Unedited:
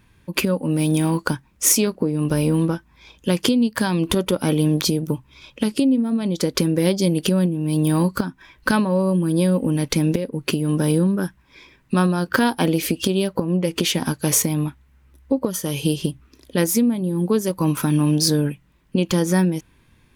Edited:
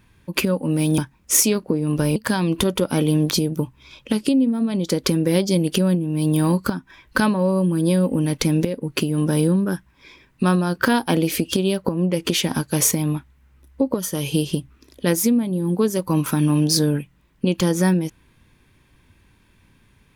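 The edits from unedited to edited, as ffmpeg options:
-filter_complex "[0:a]asplit=3[a][b][c];[a]atrim=end=0.982[d];[b]atrim=start=1.298:end=2.482[e];[c]atrim=start=3.668[f];[d][e]acrossfade=d=0.004:c1=hsin:c2=hsin[g];[g][f]acrossfade=d=0.004:c1=hsin:c2=hsin"

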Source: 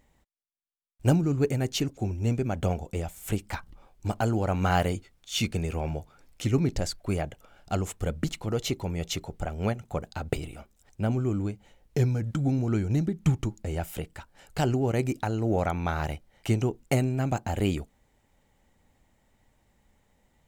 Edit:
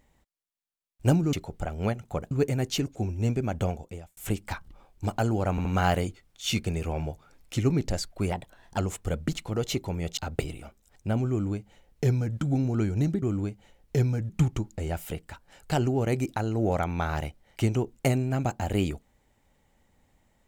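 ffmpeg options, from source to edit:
-filter_complex "[0:a]asplit=11[a][b][c][d][e][f][g][h][i][j][k];[a]atrim=end=1.332[l];[b]atrim=start=9.128:end=10.112[m];[c]atrim=start=1.328:end=3.19,asetpts=PTS-STARTPTS,afade=t=out:st=1.282:d=0.58[n];[d]atrim=start=3.19:end=4.602,asetpts=PTS-STARTPTS,afade=t=in:d=0.004:c=hsin[o];[e]atrim=start=4.528:end=4.602[p];[f]atrim=start=4.528:end=7.204[q];[g]atrim=start=7.2:end=7.73,asetpts=PTS-STARTPTS,asetrate=51597,aresample=44100[r];[h]atrim=start=7.726:end=9.132[s];[i]atrim=start=10.108:end=13.162[t];[j]atrim=start=11.238:end=12.312[u];[k]atrim=start=13.158[v];[l][m]acrossfade=d=0.004:c1=hsin:c2=hsin[w];[n][o]concat=n=2:v=0:a=1[x];[w][x]acrossfade=d=0.004:c1=hsin:c2=hsin[y];[y][p]acrossfade=d=0.004:c1=hsin:c2=hsin[z];[z][q]acrossfade=d=0.004:c1=hsin:c2=hsin[aa];[aa][r]acrossfade=d=0.004:c1=hsin:c2=hsin[ab];[ab][s]acrossfade=d=0.004:c1=hsin:c2=hsin[ac];[ac][t]acrossfade=d=0.004:c1=hsin:c2=hsin[ad];[ad][u]acrossfade=d=0.004:c1=hsin:c2=hsin[ae];[ae][v]acrossfade=d=0.004:c1=hsin:c2=hsin"

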